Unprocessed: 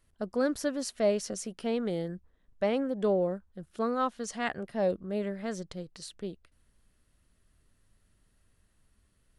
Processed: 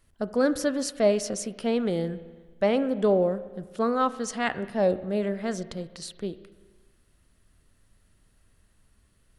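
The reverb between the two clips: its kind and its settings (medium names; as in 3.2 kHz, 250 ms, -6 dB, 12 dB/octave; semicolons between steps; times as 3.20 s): spring tank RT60 1.4 s, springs 30/38 ms, chirp 35 ms, DRR 13.5 dB; trim +5 dB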